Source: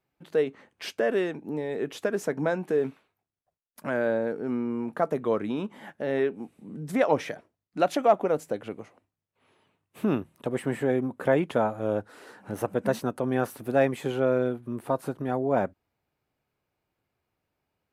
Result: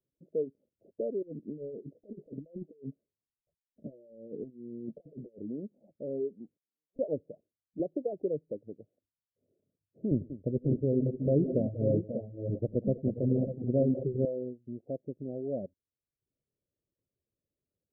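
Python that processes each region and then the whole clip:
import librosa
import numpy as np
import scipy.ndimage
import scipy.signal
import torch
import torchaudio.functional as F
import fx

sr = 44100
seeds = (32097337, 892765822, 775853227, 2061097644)

y = fx.chain(x, sr, fx.over_compress(threshold_db=-33.0, ratio=-0.5),
    fx.fixed_phaser(hz=2800.0, stages=4),
    fx.doubler(ms=14.0, db=-10), at=(1.22, 5.38))
y = fx.chain(y, sr, fx.ladder_bandpass(hz=2900.0, resonance_pct=20),
    fx.doppler_dist(depth_ms=0.85), at=(6.57, 6.99))
y = fx.chain(y, sr, fx.ripple_eq(per_octave=0.7, db=9),
    fx.band_squash(depth_pct=70), at=(7.79, 8.51))
y = fx.chain(y, sr, fx.riaa(side='playback'),
    fx.echo_multitap(ms=(82, 94, 186, 535, 593), db=(-16.5, -12.0, -10.5, -8.5, -7.5)), at=(10.11, 14.25))
y = fx.dereverb_blind(y, sr, rt60_s=0.6)
y = scipy.signal.sosfilt(scipy.signal.butter(12, 610.0, 'lowpass', fs=sr, output='sos'), y)
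y = y * librosa.db_to_amplitude(-7.0)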